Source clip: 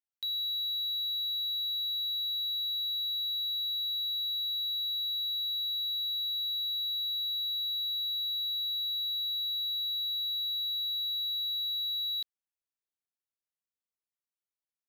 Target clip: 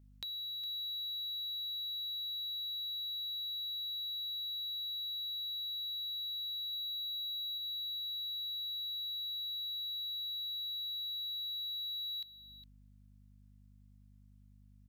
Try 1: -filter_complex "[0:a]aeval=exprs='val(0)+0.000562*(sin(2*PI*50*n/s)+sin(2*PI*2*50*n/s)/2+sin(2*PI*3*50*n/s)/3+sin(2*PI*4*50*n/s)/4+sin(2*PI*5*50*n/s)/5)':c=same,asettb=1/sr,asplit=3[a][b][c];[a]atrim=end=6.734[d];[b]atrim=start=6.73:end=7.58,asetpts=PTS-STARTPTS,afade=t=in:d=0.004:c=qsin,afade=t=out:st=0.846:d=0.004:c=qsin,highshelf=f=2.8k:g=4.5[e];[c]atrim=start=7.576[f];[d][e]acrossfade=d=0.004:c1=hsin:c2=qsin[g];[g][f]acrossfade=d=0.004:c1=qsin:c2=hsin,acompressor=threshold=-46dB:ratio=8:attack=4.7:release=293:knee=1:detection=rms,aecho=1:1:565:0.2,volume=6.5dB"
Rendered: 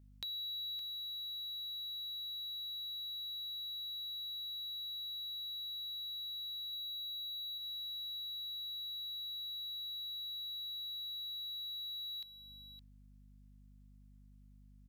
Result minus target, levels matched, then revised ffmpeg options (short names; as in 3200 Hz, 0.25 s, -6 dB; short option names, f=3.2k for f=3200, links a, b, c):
echo 0.155 s late
-filter_complex "[0:a]aeval=exprs='val(0)+0.000562*(sin(2*PI*50*n/s)+sin(2*PI*2*50*n/s)/2+sin(2*PI*3*50*n/s)/3+sin(2*PI*4*50*n/s)/4+sin(2*PI*5*50*n/s)/5)':c=same,asettb=1/sr,asplit=3[a][b][c];[a]atrim=end=6.734[d];[b]atrim=start=6.73:end=7.58,asetpts=PTS-STARTPTS,afade=t=in:d=0.004:c=qsin,afade=t=out:st=0.846:d=0.004:c=qsin,highshelf=f=2.8k:g=4.5[e];[c]atrim=start=7.576[f];[d][e]acrossfade=d=0.004:c1=hsin:c2=qsin[g];[g][f]acrossfade=d=0.004:c1=qsin:c2=hsin,acompressor=threshold=-46dB:ratio=8:attack=4.7:release=293:knee=1:detection=rms,aecho=1:1:410:0.2,volume=6.5dB"